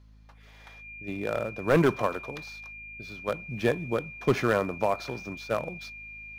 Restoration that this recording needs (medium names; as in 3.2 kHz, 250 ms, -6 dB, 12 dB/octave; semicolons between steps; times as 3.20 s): clip repair -14 dBFS; de-hum 53.2 Hz, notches 5; band-stop 2.4 kHz, Q 30